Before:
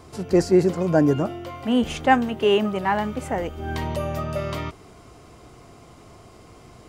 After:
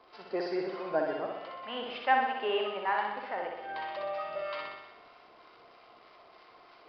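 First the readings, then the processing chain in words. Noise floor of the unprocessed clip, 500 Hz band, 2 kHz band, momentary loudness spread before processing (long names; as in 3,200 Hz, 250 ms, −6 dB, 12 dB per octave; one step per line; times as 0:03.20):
−48 dBFS, −11.0 dB, −5.5 dB, 10 LU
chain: high-pass filter 720 Hz 12 dB per octave
high-shelf EQ 3,900 Hz −9 dB
reversed playback
upward compression, threshold −48 dBFS
reversed playback
surface crackle 100 per second −39 dBFS
two-band tremolo in antiphase 3.2 Hz, depth 50%, crossover 930 Hz
flutter between parallel walls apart 10.7 metres, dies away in 1 s
downsampling to 11,025 Hz
level −3.5 dB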